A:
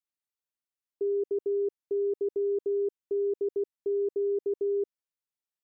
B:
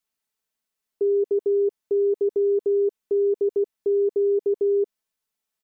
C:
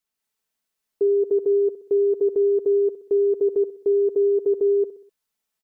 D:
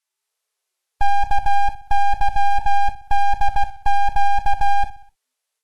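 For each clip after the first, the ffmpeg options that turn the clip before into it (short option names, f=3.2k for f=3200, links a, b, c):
-af "aecho=1:1:4.6:0.57,alimiter=level_in=1.5dB:limit=-24dB:level=0:latency=1,volume=-1.5dB,volume=8.5dB"
-af "dynaudnorm=f=130:g=3:m=4dB,aecho=1:1:63|126|189|252:0.188|0.0885|0.0416|0.0196,volume=-1.5dB"
-af "aeval=exprs='abs(val(0))':c=same,volume=7dB" -ar 32000 -c:a libvorbis -b:a 32k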